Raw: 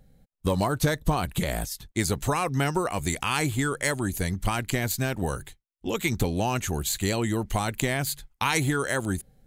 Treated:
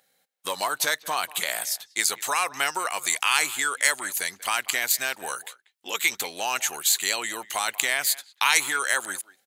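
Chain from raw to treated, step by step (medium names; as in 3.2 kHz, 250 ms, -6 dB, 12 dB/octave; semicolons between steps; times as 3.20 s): Bessel high-pass 1.4 kHz, order 2; speakerphone echo 190 ms, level -19 dB; trim +7.5 dB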